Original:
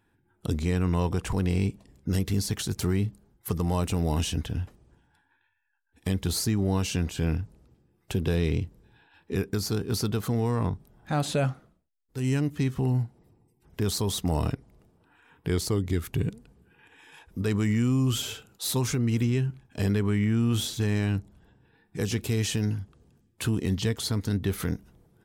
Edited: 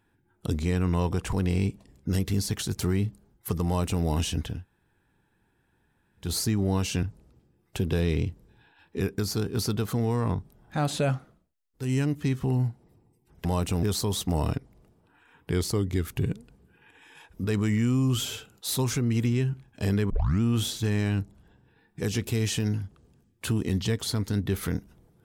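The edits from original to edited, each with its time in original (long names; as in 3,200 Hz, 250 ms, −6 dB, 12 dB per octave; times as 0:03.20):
0:03.66–0:04.04: duplicate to 0:13.80
0:04.57–0:06.25: fill with room tone, crossfade 0.16 s
0:07.03–0:07.38: remove
0:20.07: tape start 0.31 s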